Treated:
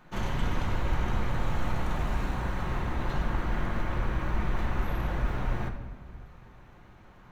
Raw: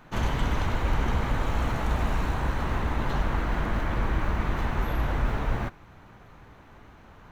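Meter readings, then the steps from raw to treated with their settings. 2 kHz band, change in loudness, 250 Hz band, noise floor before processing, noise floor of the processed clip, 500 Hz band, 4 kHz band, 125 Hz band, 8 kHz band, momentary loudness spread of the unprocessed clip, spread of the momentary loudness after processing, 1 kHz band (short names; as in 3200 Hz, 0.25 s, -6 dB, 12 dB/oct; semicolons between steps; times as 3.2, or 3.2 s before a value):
-4.0 dB, -3.5 dB, -3.0 dB, -51 dBFS, -53 dBFS, -3.5 dB, -4.0 dB, -3.0 dB, n/a, 1 LU, 6 LU, -4.0 dB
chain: shoebox room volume 1200 m³, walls mixed, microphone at 0.95 m; gain -5 dB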